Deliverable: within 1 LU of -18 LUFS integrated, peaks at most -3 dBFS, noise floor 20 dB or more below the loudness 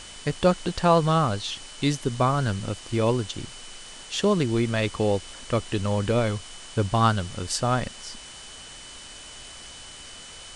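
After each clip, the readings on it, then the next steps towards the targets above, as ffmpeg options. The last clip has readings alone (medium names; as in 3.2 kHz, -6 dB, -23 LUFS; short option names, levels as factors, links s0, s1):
steady tone 3 kHz; tone level -46 dBFS; noise floor -43 dBFS; noise floor target -45 dBFS; loudness -25.0 LUFS; peak level -6.5 dBFS; loudness target -18.0 LUFS
-> -af "bandreject=f=3000:w=30"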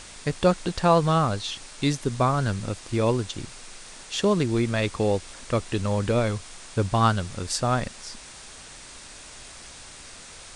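steady tone not found; noise floor -44 dBFS; noise floor target -45 dBFS
-> -af "afftdn=nr=6:nf=-44"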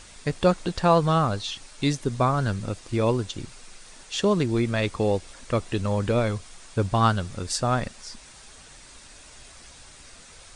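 noise floor -48 dBFS; loudness -25.0 LUFS; peak level -7.0 dBFS; loudness target -18.0 LUFS
-> -af "volume=2.24,alimiter=limit=0.708:level=0:latency=1"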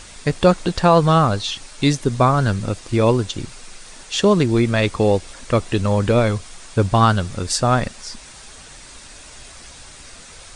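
loudness -18.5 LUFS; peak level -3.0 dBFS; noise floor -41 dBFS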